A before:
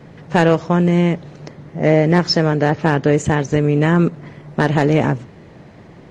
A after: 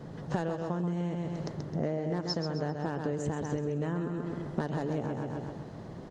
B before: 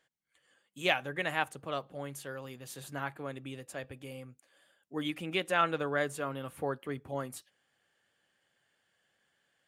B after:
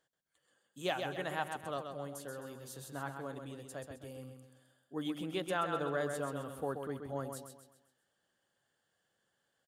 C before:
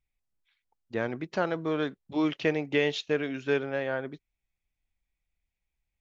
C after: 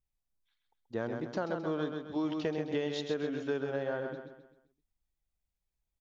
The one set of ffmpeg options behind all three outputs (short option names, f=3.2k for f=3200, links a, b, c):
-af "equalizer=f=2.3k:t=o:w=0.7:g=-11.5,aecho=1:1:131|262|393|524|655:0.473|0.194|0.0795|0.0326|0.0134,acompressor=threshold=-25dB:ratio=16,volume=-3dB"